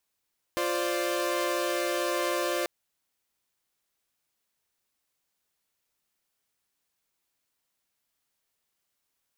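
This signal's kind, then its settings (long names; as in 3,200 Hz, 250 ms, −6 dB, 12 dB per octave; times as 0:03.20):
held notes F4/C5/D5 saw, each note −28.5 dBFS 2.09 s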